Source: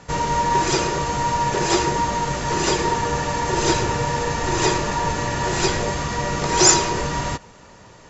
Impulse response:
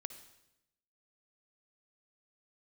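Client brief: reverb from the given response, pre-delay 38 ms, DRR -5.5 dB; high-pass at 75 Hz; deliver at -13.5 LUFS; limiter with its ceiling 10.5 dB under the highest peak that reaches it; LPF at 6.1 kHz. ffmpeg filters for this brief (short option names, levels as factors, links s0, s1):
-filter_complex "[0:a]highpass=75,lowpass=6100,alimiter=limit=0.211:level=0:latency=1,asplit=2[s0][s1];[1:a]atrim=start_sample=2205,adelay=38[s2];[s1][s2]afir=irnorm=-1:irlink=0,volume=2.66[s3];[s0][s3]amix=inputs=2:normalize=0,volume=1.41"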